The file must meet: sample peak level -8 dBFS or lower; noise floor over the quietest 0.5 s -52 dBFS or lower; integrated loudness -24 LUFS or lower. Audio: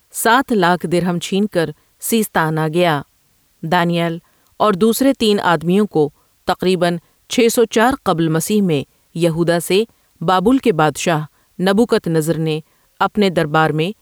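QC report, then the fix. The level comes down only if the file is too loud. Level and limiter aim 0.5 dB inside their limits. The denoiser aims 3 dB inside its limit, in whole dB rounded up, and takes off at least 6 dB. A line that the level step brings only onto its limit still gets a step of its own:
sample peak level -3.0 dBFS: fail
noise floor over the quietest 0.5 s -58 dBFS: OK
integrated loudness -16.5 LUFS: fail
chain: gain -8 dB

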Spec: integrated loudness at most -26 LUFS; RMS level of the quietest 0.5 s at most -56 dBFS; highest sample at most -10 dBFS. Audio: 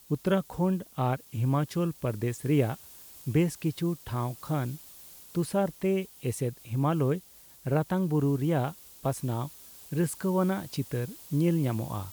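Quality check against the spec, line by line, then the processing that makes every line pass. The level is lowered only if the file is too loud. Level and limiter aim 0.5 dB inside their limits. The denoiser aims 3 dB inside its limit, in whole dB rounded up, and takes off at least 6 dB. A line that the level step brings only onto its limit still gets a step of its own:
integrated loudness -30.0 LUFS: OK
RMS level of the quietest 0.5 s -50 dBFS: fail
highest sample -13.5 dBFS: OK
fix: denoiser 9 dB, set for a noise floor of -50 dBFS

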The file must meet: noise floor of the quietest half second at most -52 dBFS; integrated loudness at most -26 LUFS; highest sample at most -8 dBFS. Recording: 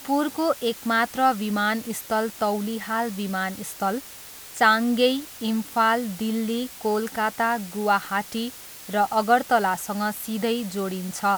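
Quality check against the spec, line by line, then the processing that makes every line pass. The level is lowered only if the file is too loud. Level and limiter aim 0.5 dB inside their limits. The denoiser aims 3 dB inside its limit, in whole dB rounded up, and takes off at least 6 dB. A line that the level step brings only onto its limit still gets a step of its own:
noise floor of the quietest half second -42 dBFS: fail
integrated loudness -24.5 LUFS: fail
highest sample -5.5 dBFS: fail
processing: denoiser 11 dB, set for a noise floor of -42 dBFS; gain -2 dB; limiter -8.5 dBFS

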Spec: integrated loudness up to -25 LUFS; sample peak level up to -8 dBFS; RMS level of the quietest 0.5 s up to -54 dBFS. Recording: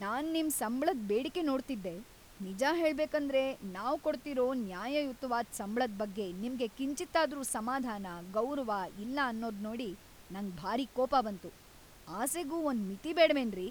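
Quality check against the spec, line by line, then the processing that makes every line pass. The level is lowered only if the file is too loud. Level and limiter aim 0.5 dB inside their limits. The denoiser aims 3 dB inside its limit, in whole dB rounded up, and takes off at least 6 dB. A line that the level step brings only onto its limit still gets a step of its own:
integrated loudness -34.5 LUFS: OK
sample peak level -14.0 dBFS: OK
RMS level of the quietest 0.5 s -56 dBFS: OK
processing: none

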